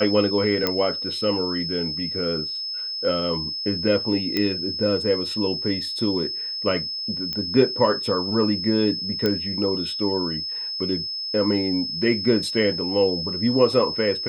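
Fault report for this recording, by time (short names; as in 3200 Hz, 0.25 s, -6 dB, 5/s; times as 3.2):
tone 5200 Hz -27 dBFS
0.67 pop -7 dBFS
4.37 pop -10 dBFS
7.33 pop -14 dBFS
9.26 pop -9 dBFS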